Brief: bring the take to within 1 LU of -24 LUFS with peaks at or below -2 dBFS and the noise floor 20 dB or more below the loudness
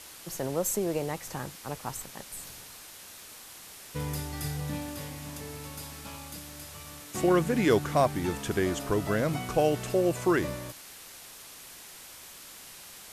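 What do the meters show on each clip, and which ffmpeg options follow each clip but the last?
noise floor -48 dBFS; noise floor target -50 dBFS; loudness -30.0 LUFS; peak -11.5 dBFS; loudness target -24.0 LUFS
-> -af "afftdn=nr=6:nf=-48"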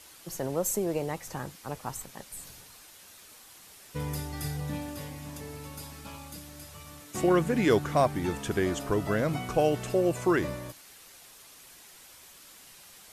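noise floor -53 dBFS; loudness -30.0 LUFS; peak -11.5 dBFS; loudness target -24.0 LUFS
-> -af "volume=6dB"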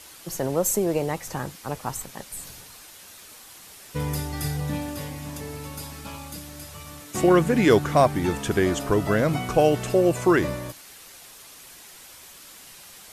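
loudness -24.0 LUFS; peak -5.5 dBFS; noise floor -47 dBFS

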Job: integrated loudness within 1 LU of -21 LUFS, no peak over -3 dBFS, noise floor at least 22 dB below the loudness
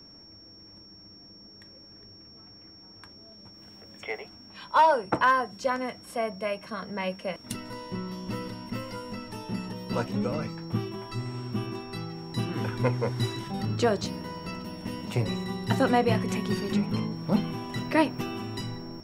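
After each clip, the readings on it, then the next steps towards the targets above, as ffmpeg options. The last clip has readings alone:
steady tone 5500 Hz; tone level -49 dBFS; loudness -29.5 LUFS; peak -9.0 dBFS; loudness target -21.0 LUFS
-> -af "bandreject=f=5.5k:w=30"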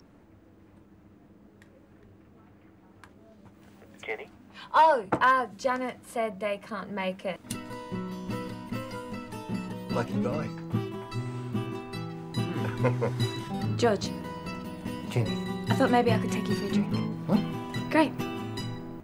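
steady tone none; loudness -29.5 LUFS; peak -9.0 dBFS; loudness target -21.0 LUFS
-> -af "volume=8.5dB,alimiter=limit=-3dB:level=0:latency=1"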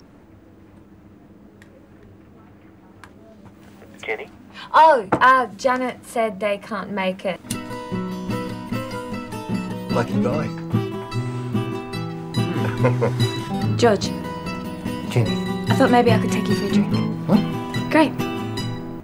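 loudness -21.5 LUFS; peak -3.0 dBFS; noise floor -47 dBFS

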